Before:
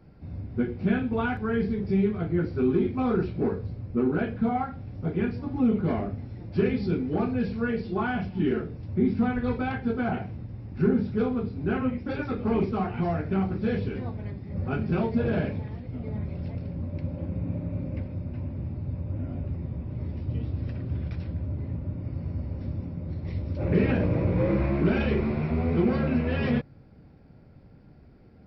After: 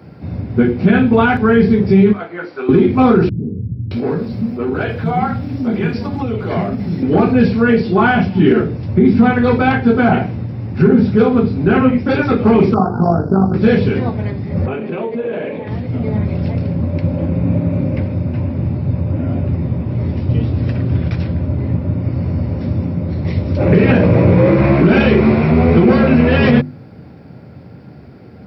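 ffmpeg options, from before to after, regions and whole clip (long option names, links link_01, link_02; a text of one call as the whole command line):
ffmpeg -i in.wav -filter_complex "[0:a]asettb=1/sr,asplit=3[link_01][link_02][link_03];[link_01]atrim=end=2.134[link_04];[link_02]atrim=start=2.13:end=2.69,asetpts=PTS-STARTPTS,afade=type=in:duration=0.004:curve=qsin,afade=type=out:start_time=0.556:duration=0.004:curve=qsin,highpass=830,highshelf=frequency=2100:gain=-9[link_05];[link_03]atrim=start=2.686[link_06];[link_04][link_05]acrossfade=duration=0.004:curve1=hsin:curve2=qsin[link_07];[link_07][link_06]acrossfade=duration=0.004:curve1=qsin:curve2=hsin,asettb=1/sr,asplit=3[link_08][link_09][link_10];[link_08]atrim=end=3.294[link_11];[link_09]atrim=start=3.29:end=7.03,asetpts=PTS-STARTPTS,afade=type=in:duration=0.004:curve=qsin,afade=type=out:start_time=3.736:duration=0.004:curve=qsin,highshelf=frequency=4300:gain=11,acompressor=threshold=-31dB:ratio=2.5:attack=3.2:release=140:knee=1:detection=peak,acrossover=split=280[link_12][link_13];[link_13]adelay=620[link_14];[link_12][link_14]amix=inputs=2:normalize=0,atrim=end_sample=164934[link_15];[link_10]atrim=start=7.026[link_16];[link_11][link_15]acrossfade=duration=0.004:curve1=hsin:curve2=qsin[link_17];[link_17][link_16]acrossfade=duration=0.004:curve1=qsin:curve2=hsin,asettb=1/sr,asplit=3[link_18][link_19][link_20];[link_18]atrim=end=12.744[link_21];[link_19]atrim=start=12.74:end=13.54,asetpts=PTS-STARTPTS,afade=type=in:duration=0.004:curve=qsin,afade=type=out:start_time=0.796:duration=0.004:curve=qsin,tremolo=f=50:d=0.621,asuperstop=centerf=2600:order=12:qfactor=0.79[link_22];[link_20]atrim=start=13.536[link_23];[link_21][link_22]acrossfade=duration=0.004:curve1=hsin:curve2=qsin[link_24];[link_24][link_23]acrossfade=duration=0.004:curve1=qsin:curve2=hsin,asettb=1/sr,asplit=3[link_25][link_26][link_27];[link_25]atrim=end=14.664[link_28];[link_26]atrim=start=14.66:end=15.67,asetpts=PTS-STARTPTS,afade=type=in:duration=0.004:curve=qsin,afade=type=out:start_time=1.006:duration=0.004:curve=qsin,highpass=330,equalizer=frequency=490:width_type=q:width=4:gain=5,equalizer=frequency=730:width_type=q:width=4:gain=-4,equalizer=frequency=1400:width_type=q:width=4:gain=-8,lowpass=frequency=3200:width=0.5412,lowpass=frequency=3200:width=1.3066,acompressor=threshold=-35dB:ratio=5:attack=3.2:release=140:knee=1:detection=peak[link_29];[link_27]atrim=start=15.666[link_30];[link_28][link_29]acrossfade=duration=0.004:curve1=hsin:curve2=qsin[link_31];[link_31][link_30]acrossfade=duration=0.004:curve1=qsin:curve2=hsin,highpass=frequency=86:width=0.5412,highpass=frequency=86:width=1.3066,bandreject=frequency=50:width_type=h:width=6,bandreject=frequency=100:width_type=h:width=6,bandreject=frequency=150:width_type=h:width=6,bandreject=frequency=200:width_type=h:width=6,bandreject=frequency=250:width_type=h:width=6,bandreject=frequency=300:width_type=h:width=6,bandreject=frequency=350:width_type=h:width=6,alimiter=level_in=18dB:limit=-1dB:release=50:level=0:latency=1,volume=-1dB" out.wav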